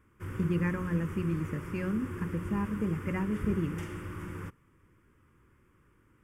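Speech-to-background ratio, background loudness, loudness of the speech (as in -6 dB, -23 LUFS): 8.0 dB, -41.0 LUFS, -33.0 LUFS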